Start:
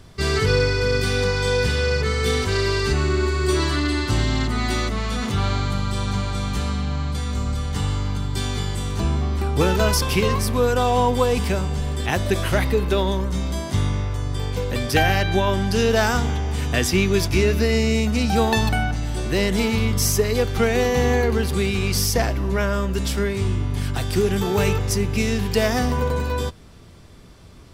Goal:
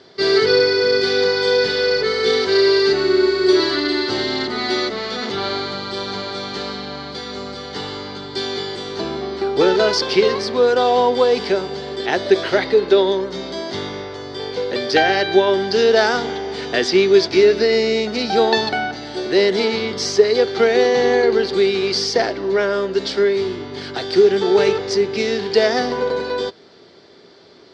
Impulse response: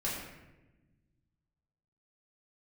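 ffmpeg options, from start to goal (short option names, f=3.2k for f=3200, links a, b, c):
-af "highpass=360,equalizer=f=390:t=q:w=4:g=8,equalizer=f=1.1k:t=q:w=4:g=-7,equalizer=f=2.6k:t=q:w=4:g=-7,equalizer=f=4.5k:t=q:w=4:g=7,lowpass=f=4.9k:w=0.5412,lowpass=f=4.9k:w=1.3066,volume=5dB"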